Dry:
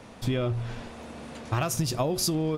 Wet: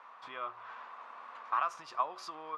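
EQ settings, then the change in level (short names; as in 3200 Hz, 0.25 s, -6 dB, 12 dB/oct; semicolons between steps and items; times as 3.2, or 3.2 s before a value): ladder band-pass 1200 Hz, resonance 70%; +6.5 dB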